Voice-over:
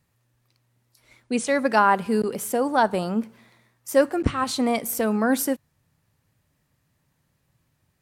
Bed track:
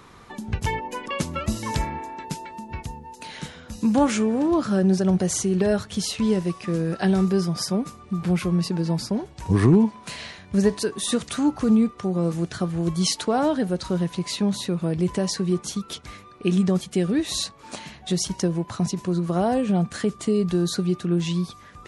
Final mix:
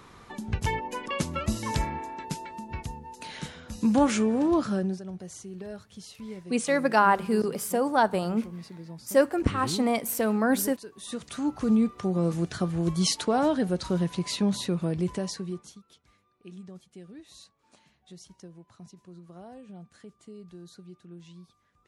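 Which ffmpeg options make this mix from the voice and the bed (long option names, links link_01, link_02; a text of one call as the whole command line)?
ffmpeg -i stem1.wav -i stem2.wav -filter_complex "[0:a]adelay=5200,volume=-2.5dB[link_01];[1:a]volume=13.5dB,afade=type=out:start_time=4.57:duration=0.44:silence=0.158489,afade=type=in:start_time=10.92:duration=1.07:silence=0.158489,afade=type=out:start_time=14.72:duration=1.09:silence=0.0841395[link_02];[link_01][link_02]amix=inputs=2:normalize=0" out.wav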